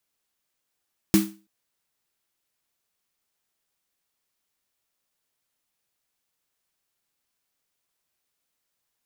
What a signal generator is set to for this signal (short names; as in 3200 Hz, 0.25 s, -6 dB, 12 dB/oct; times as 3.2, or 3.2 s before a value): snare drum length 0.33 s, tones 200 Hz, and 320 Hz, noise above 710 Hz, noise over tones -8.5 dB, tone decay 0.33 s, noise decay 0.31 s